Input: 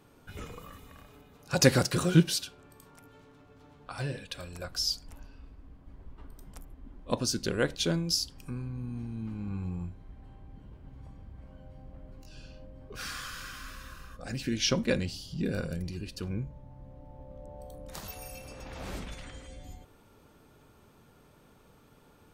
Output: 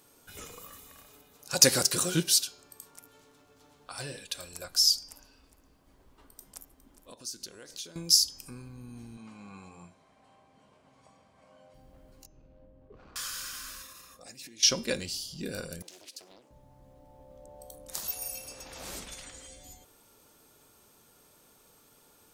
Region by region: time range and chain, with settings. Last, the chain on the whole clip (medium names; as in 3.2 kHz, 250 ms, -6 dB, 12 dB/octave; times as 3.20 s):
5.03–7.96 s: bass shelf 140 Hz -5.5 dB + compression 8:1, threshold -42 dBFS + delay 410 ms -15.5 dB
9.17–11.74 s: cabinet simulation 180–9400 Hz, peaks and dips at 320 Hz -7 dB, 660 Hz +7 dB, 1.1 kHz +7 dB, 2.3 kHz +5 dB + hum notches 60/120/180/240/300/360/420 Hz
12.26–13.16 s: median filter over 25 samples + tape spacing loss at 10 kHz 44 dB
13.82–14.63 s: compression 16:1, threshold -41 dBFS + comb of notches 1.5 kHz
15.82–16.51 s: high-pass 290 Hz 24 dB/octave + compression, threshold -47 dBFS + loudspeaker Doppler distortion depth 1 ms
whole clip: tone controls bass -8 dB, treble +14 dB; de-hum 395.8 Hz, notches 18; trim -2.5 dB